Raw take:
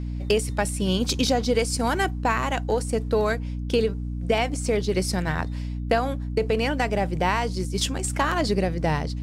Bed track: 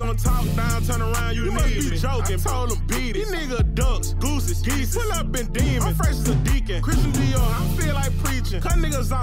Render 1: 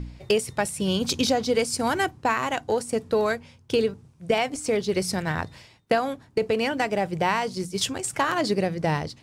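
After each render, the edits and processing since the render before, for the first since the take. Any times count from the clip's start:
hum removal 60 Hz, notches 5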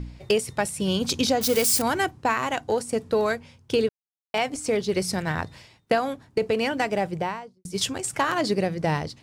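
0:01.41–0:01.82: spike at every zero crossing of −17.5 dBFS
0:03.89–0:04.34: silence
0:06.99–0:07.65: fade out and dull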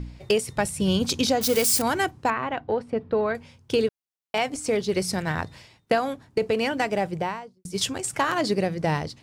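0:00.55–0:01.05: low-shelf EQ 110 Hz +11 dB
0:02.30–0:03.35: high-frequency loss of the air 380 metres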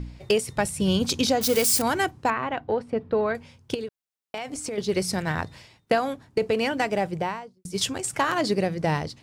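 0:03.74–0:04.78: downward compressor 10 to 1, threshold −28 dBFS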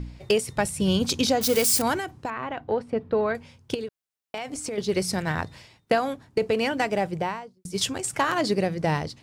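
0:01.98–0:02.71: downward compressor, threshold −26 dBFS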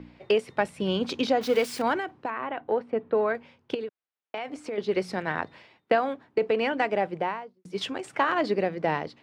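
three-way crossover with the lows and the highs turned down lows −19 dB, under 210 Hz, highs −22 dB, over 3,500 Hz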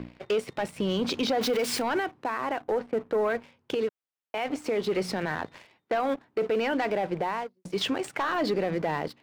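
leveller curve on the samples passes 2
brickwall limiter −20 dBFS, peak gain reduction 11 dB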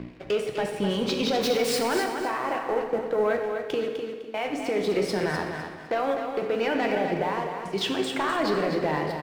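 repeating echo 253 ms, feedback 28%, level −7 dB
dense smooth reverb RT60 1.3 s, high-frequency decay 0.9×, DRR 3.5 dB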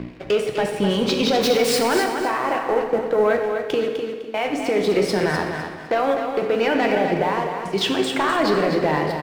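level +6 dB

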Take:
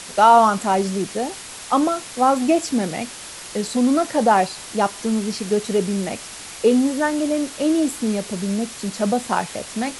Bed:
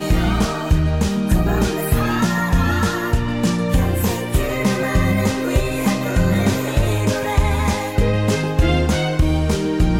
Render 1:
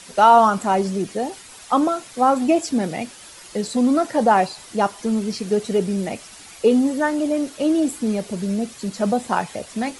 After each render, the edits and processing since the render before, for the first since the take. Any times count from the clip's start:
broadband denoise 9 dB, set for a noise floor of −36 dBFS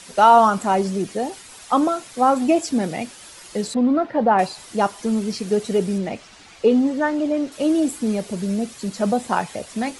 0:03.74–0:04.39: high-frequency loss of the air 350 metres
0:05.98–0:07.52: high-frequency loss of the air 93 metres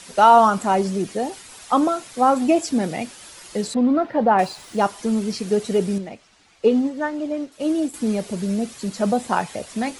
0:03.84–0:04.85: running median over 3 samples
0:05.98–0:07.94: expander for the loud parts, over −32 dBFS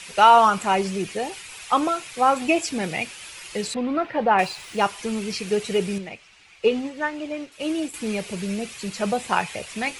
graphic EQ with 15 bands 250 Hz −9 dB, 630 Hz −4 dB, 2,500 Hz +10 dB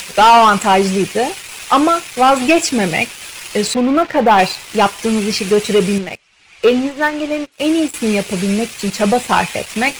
leveller curve on the samples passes 3
upward compression, threshold −24 dBFS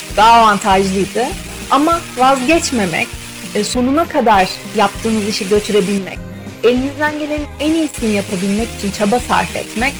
mix in bed −12.5 dB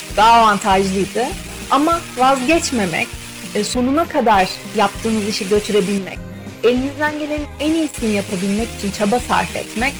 level −2.5 dB

